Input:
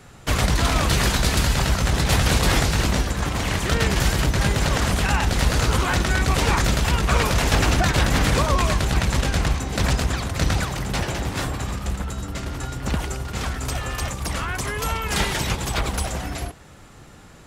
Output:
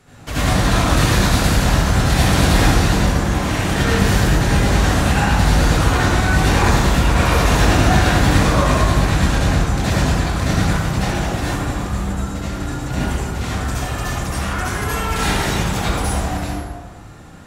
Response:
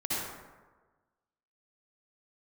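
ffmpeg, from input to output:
-filter_complex "[1:a]atrim=start_sample=2205,asetrate=39249,aresample=44100[s0];[0:a][s0]afir=irnorm=-1:irlink=0,volume=0.668"

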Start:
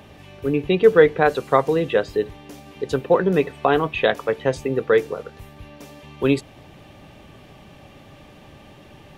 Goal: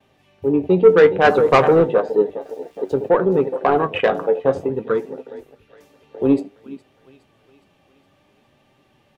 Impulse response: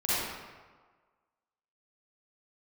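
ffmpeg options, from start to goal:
-filter_complex "[0:a]lowshelf=f=130:g=-8.5,aecho=1:1:414|828|1242|1656|2070|2484:0.188|0.107|0.0612|0.0349|0.0199|0.0113,asplit=3[s0][s1][s2];[s0]afade=t=out:st=1.23:d=0.02[s3];[s1]acontrast=77,afade=t=in:st=1.23:d=0.02,afade=t=out:st=1.83:d=0.02[s4];[s2]afade=t=in:st=1.83:d=0.02[s5];[s3][s4][s5]amix=inputs=3:normalize=0,asplit=2[s6][s7];[s7]adelay=77,lowpass=f=1400:p=1,volume=0.178,asplit=2[s8][s9];[s9]adelay=77,lowpass=f=1400:p=1,volume=0.47,asplit=2[s10][s11];[s11]adelay=77,lowpass=f=1400:p=1,volume=0.47,asplit=2[s12][s13];[s13]adelay=77,lowpass=f=1400:p=1,volume=0.47[s14];[s6][s8][s10][s12][s14]amix=inputs=5:normalize=0,asettb=1/sr,asplit=3[s15][s16][s17];[s15]atrim=end=2.414[s18];[s16]atrim=start=2.41:end=3.09,asetpts=PTS-STARTPTS,afade=t=in:d=0.004:c=qsin,afade=t=out:st=0.676:d=0.004:c=qsin,aeval=exprs='val(0)*gte(abs(val(0)),0.00841)':c=same[s19];[s17]atrim=start=3.086[s20];[s18][s19]acrossfade=d=0.004:c1=hsin:c2=qsin[s21];[s21][s20]acrossfade=d=0.004:c1=qsin:c2=hsin,afwtdn=0.0708,asettb=1/sr,asplit=3[s22][s23][s24];[s22]atrim=end=4.694[s25];[s23]atrim=start=4.69:end=5.69,asetpts=PTS-STARTPTS,afade=t=in:d=0.004:c=qsin,afade=t=out:st=0.996:d=0.004:c=qsin,equalizer=f=640:w=1.1:g=-11.5[s26];[s24]atrim=start=5.686[s27];[s25][s26]acrossfade=d=0.004:c1=hsin:c2=qsin[s28];[s28][s27]acrossfade=d=0.004:c1=qsin:c2=hsin,acontrast=79,agate=range=0.0224:threshold=0.00112:ratio=3:detection=peak,flanger=delay=7.6:depth=3.7:regen=61:speed=0.57:shape=sinusoidal,volume=1.19"

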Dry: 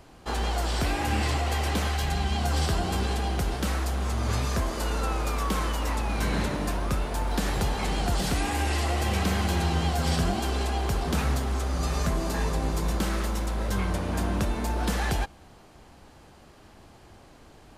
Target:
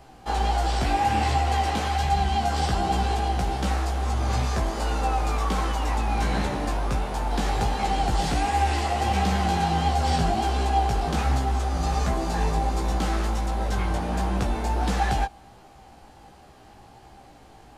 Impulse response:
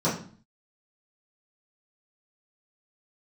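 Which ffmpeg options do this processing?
-filter_complex "[0:a]equalizer=f=790:t=o:w=0.2:g=11,flanger=delay=15:depth=3.5:speed=1.4,acrossover=split=9100[s0][s1];[s1]acompressor=threshold=0.00112:ratio=4:attack=1:release=60[s2];[s0][s2]amix=inputs=2:normalize=0,volume=1.5"

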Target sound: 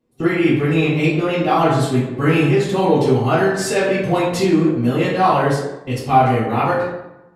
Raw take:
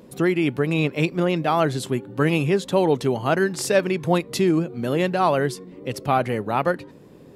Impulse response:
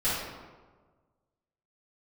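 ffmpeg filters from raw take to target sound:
-filter_complex "[0:a]agate=range=0.0631:threshold=0.0178:ratio=16:detection=peak[s0];[1:a]atrim=start_sample=2205,asetrate=70560,aresample=44100[s1];[s0][s1]afir=irnorm=-1:irlink=0,volume=0.75"

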